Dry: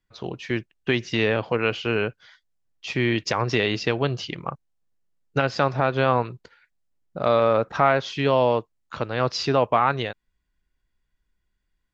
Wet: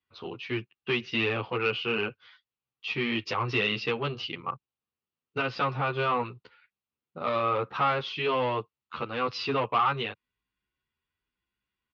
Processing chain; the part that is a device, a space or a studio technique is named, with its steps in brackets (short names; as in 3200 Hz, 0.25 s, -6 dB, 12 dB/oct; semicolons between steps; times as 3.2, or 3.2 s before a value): barber-pole flanger into a guitar amplifier (endless flanger 10.4 ms +1 Hz; soft clip -18 dBFS, distortion -15 dB; speaker cabinet 110–4400 Hz, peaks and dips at 170 Hz -8 dB, 300 Hz -4 dB, 630 Hz -9 dB, 1200 Hz +5 dB, 1700 Hz -5 dB, 2700 Hz +6 dB)